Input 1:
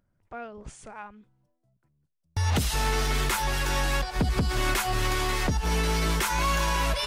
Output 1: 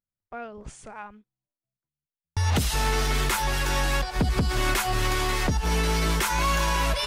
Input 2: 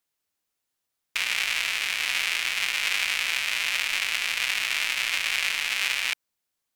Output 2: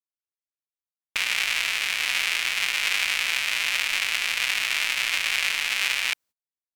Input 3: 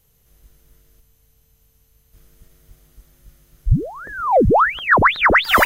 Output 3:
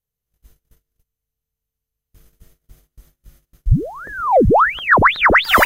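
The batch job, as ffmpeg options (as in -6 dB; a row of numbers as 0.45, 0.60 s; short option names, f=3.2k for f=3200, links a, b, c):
-af "agate=range=-26dB:threshold=-49dB:ratio=16:detection=peak,volume=1.5dB"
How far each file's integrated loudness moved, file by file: +1.5, +1.5, +1.5 LU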